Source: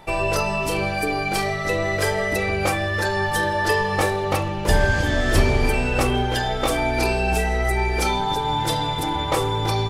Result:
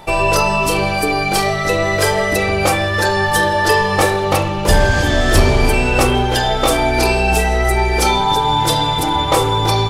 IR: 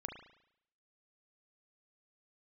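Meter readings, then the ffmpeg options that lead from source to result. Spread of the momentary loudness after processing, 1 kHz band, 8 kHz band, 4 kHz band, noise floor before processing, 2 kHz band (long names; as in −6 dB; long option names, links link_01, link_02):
3 LU, +7.5 dB, +9.0 dB, +8.5 dB, −25 dBFS, +6.0 dB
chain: -filter_complex "[0:a]equalizer=frequency=1900:width=1.4:gain=-4,acontrast=44,asplit=2[link_01][link_02];[1:a]atrim=start_sample=2205,lowshelf=frequency=430:gain=-9[link_03];[link_02][link_03]afir=irnorm=-1:irlink=0,volume=3dB[link_04];[link_01][link_04]amix=inputs=2:normalize=0,volume=-2dB"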